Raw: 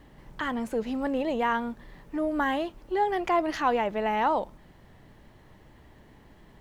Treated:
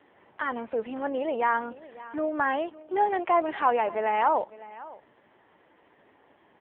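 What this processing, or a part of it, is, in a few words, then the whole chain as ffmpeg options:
satellite phone: -af "highpass=390,lowpass=3.2k,aecho=1:1:557:0.119,volume=3dB" -ar 8000 -c:a libopencore_amrnb -b:a 5900

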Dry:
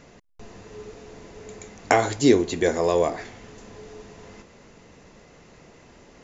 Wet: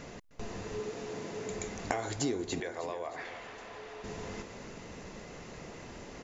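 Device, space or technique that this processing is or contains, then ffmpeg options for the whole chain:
serial compression, peaks first: -filter_complex "[0:a]acompressor=threshold=-31dB:ratio=5,acompressor=threshold=-40dB:ratio=1.5,asettb=1/sr,asplit=3[a][b][c];[a]atrim=end=0.804[d];[b]atrim=start=0.8:end=1.5,asetpts=PTS-STARTPTS,afade=t=in:d=0.004:c=qsin,afade=t=out:st=0.696:d=0.004:c=qsin,highpass=f=110:w=0.5412,highpass=f=110:w=1.3066[e];[c]atrim=start=1.496[f];[d][e]acrossfade=d=0.004:c1=hsin:c2=qsin[g];[g][f]acrossfade=d=0.004:c1=qsin:c2=hsin,asettb=1/sr,asplit=3[h][i][j];[h]atrim=end=2.604[k];[i]atrim=start=2.6:end=4.04,asetpts=PTS-STARTPTS,afade=t=in:d=0.004:c=qsin,afade=t=out:st=1.436:d=0.004:c=qsin,acrossover=split=530 4000:gain=0.158 1 0.2[l][m][n];[l][m][n]amix=inputs=3:normalize=0[o];[j]atrim=start=4.036[p];[k][o]acrossfade=d=0.004:c1=hsin:c2=qsin[q];[q][p]acrossfade=d=0.004:c1=qsin:c2=hsin,aecho=1:1:309|618|927|1236|1545:0.2|0.0958|0.046|0.0221|0.0106,volume=4dB"

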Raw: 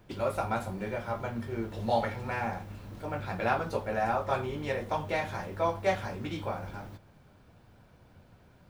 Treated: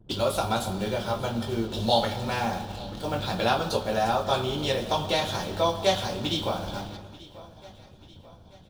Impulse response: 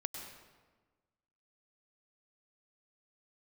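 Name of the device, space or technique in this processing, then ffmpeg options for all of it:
compressed reverb return: -filter_complex "[0:a]asplit=2[a][b];[1:a]atrim=start_sample=2205[c];[b][c]afir=irnorm=-1:irlink=0,acompressor=threshold=-32dB:ratio=6,volume=-2.5dB[d];[a][d]amix=inputs=2:normalize=0,anlmdn=0.00398,highshelf=f=2.7k:t=q:w=3:g=7.5,aecho=1:1:887|1774|2661|3548:0.1|0.05|0.025|0.0125,volume=2.5dB"

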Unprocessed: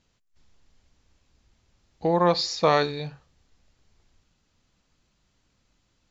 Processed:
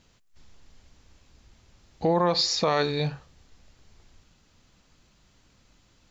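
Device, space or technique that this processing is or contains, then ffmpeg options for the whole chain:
stacked limiters: -af "alimiter=limit=-12.5dB:level=0:latency=1:release=301,alimiter=limit=-17.5dB:level=0:latency=1,alimiter=limit=-21.5dB:level=0:latency=1:release=299,volume=8dB"

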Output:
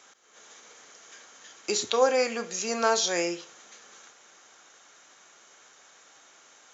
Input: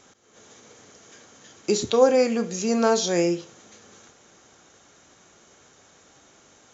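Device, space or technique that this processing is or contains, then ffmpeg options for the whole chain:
filter by subtraction: -filter_complex "[0:a]asplit=2[a][b];[b]lowpass=1.4k,volume=-1[c];[a][c]amix=inputs=2:normalize=0"

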